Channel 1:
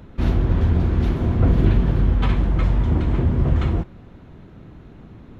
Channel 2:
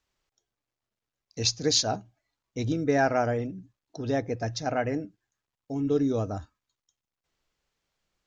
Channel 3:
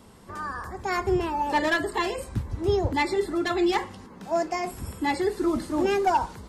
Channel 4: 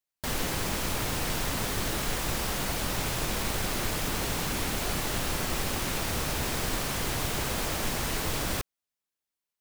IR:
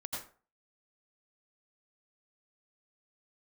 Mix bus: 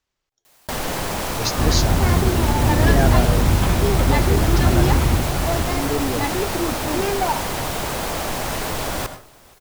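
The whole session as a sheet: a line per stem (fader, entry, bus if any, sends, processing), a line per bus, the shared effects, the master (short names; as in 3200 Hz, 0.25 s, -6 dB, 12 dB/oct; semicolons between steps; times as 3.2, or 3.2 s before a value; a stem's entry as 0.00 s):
0.0 dB, 1.40 s, no send, echo send -7 dB, dry
+0.5 dB, 0.00 s, no send, no echo send, dry
-0.5 dB, 1.15 s, no send, no echo send, dry
0.0 dB, 0.45 s, send -7.5 dB, echo send -24 dB, bell 720 Hz +6.5 dB 1.5 oct; fast leveller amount 50%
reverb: on, RT60 0.40 s, pre-delay 77 ms
echo: feedback echo 0.474 s, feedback 47%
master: dry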